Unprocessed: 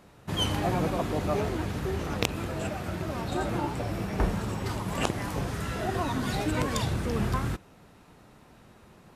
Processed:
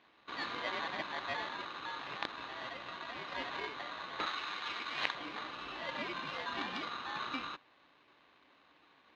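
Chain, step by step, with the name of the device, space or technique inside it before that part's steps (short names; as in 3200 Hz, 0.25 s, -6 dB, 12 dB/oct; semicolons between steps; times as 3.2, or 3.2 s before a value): ring modulator pedal into a guitar cabinet (polarity switched at an audio rate 1300 Hz; speaker cabinet 87–3800 Hz, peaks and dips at 100 Hz -8 dB, 300 Hz +7 dB, 1400 Hz -9 dB, 2900 Hz +3 dB); 4.26–5.15 tilt shelf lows -6.5 dB, about 790 Hz; gain -9 dB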